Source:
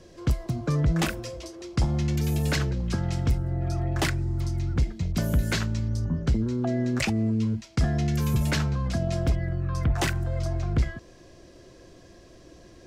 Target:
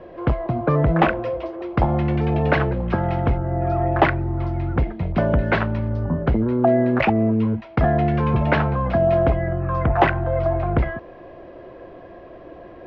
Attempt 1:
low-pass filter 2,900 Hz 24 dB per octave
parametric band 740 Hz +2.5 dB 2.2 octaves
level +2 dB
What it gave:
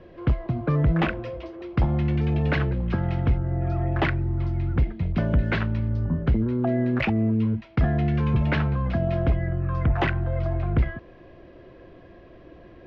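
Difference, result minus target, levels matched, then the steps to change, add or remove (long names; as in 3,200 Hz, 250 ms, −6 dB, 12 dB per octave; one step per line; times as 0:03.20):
1,000 Hz band −7.0 dB
change: parametric band 740 Hz +14.5 dB 2.2 octaves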